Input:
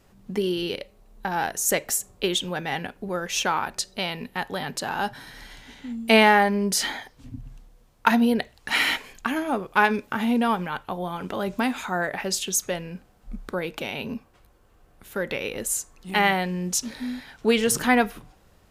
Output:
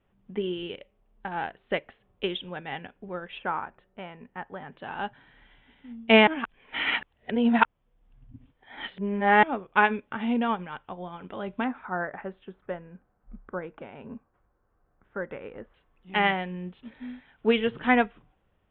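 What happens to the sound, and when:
3.38–4.72 s: Chebyshev low-pass 1.5 kHz
6.27–9.43 s: reverse
11.64–15.74 s: resonant high shelf 2.1 kHz -12 dB, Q 1.5
whole clip: steep low-pass 3.5 kHz 96 dB/octave; upward expansion 1.5:1, over -39 dBFS

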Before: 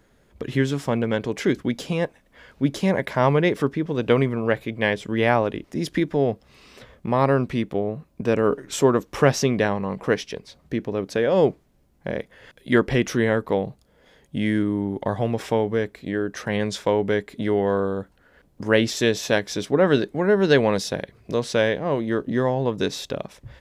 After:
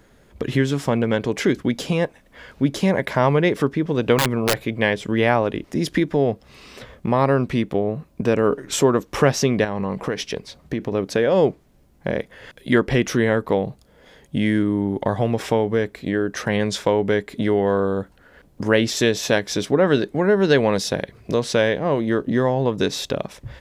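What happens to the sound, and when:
4.18–4.67 s: integer overflow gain 14 dB
9.64–10.95 s: compression 5:1, threshold -24 dBFS
whole clip: compression 1.5:1, threshold -27 dBFS; trim +6 dB

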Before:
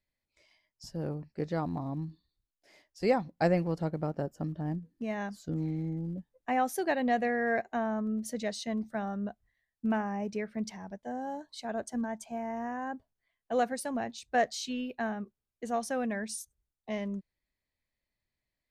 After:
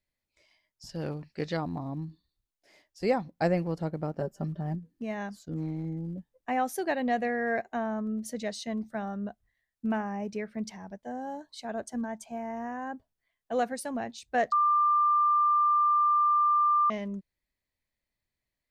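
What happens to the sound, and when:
0.89–1.57 s: peaking EQ 3.5 kHz +12.5 dB 2.5 oct
4.20–4.75 s: comb 5.1 ms
5.39–5.85 s: transient shaper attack -4 dB, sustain -11 dB
14.52–16.90 s: bleep 1.19 kHz -20.5 dBFS

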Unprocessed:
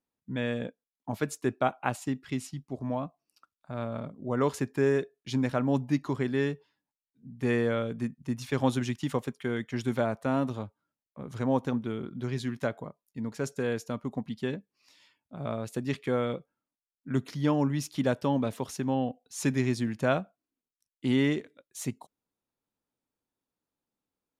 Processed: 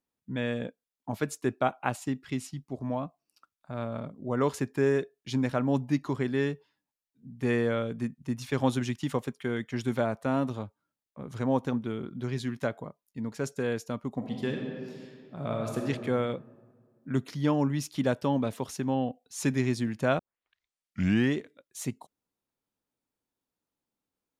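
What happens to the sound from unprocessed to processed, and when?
14.16–15.81 s: reverb throw, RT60 2 s, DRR 0.5 dB
20.19 s: tape start 1.17 s

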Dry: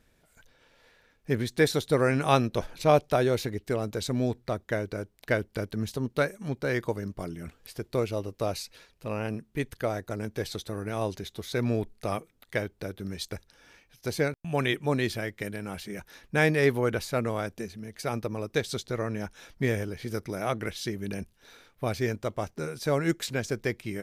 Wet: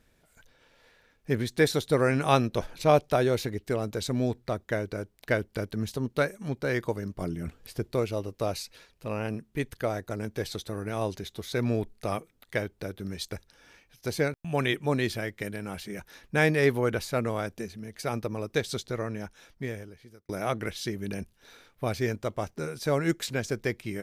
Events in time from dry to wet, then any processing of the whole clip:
7.21–7.92 s: bass shelf 460 Hz +6 dB
18.78–20.29 s: fade out

